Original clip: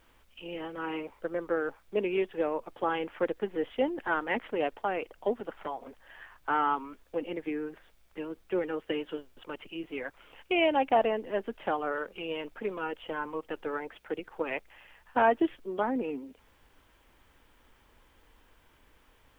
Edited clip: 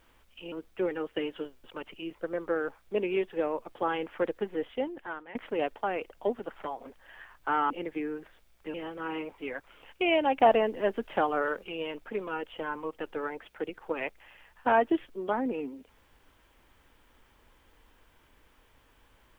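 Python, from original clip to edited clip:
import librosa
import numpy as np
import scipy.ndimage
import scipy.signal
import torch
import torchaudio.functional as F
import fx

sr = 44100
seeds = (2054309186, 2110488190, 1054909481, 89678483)

y = fx.edit(x, sr, fx.swap(start_s=0.52, length_s=0.64, other_s=8.25, other_length_s=1.63),
    fx.fade_out_to(start_s=3.49, length_s=0.87, floor_db=-19.0),
    fx.cut(start_s=6.71, length_s=0.5),
    fx.clip_gain(start_s=10.88, length_s=1.26, db=3.5), tone=tone)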